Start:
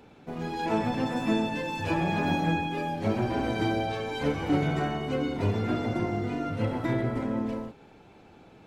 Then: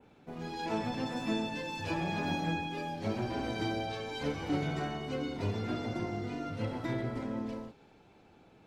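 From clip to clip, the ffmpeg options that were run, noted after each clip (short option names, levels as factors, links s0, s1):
-af "adynamicequalizer=threshold=0.00158:dfrequency=4900:dqfactor=1.1:tfrequency=4900:tqfactor=1.1:attack=5:release=100:ratio=0.375:range=3.5:mode=boostabove:tftype=bell,volume=0.447"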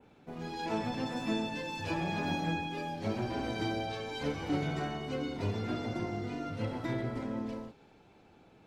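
-af anull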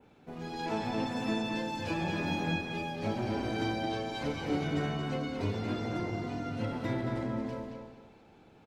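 -filter_complex "[0:a]asplit=2[s0][s1];[s1]adelay=224,lowpass=f=4800:p=1,volume=0.631,asplit=2[s2][s3];[s3]adelay=224,lowpass=f=4800:p=1,volume=0.3,asplit=2[s4][s5];[s5]adelay=224,lowpass=f=4800:p=1,volume=0.3,asplit=2[s6][s7];[s7]adelay=224,lowpass=f=4800:p=1,volume=0.3[s8];[s0][s2][s4][s6][s8]amix=inputs=5:normalize=0"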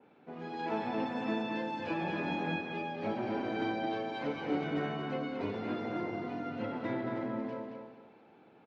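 -af "highpass=210,lowpass=2700"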